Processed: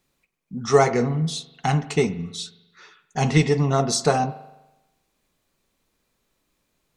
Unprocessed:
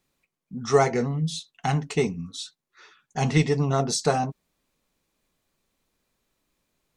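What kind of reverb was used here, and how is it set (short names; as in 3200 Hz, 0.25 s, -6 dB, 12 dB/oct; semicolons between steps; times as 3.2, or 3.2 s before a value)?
spring tank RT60 1 s, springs 41 ms, chirp 35 ms, DRR 14 dB; gain +3 dB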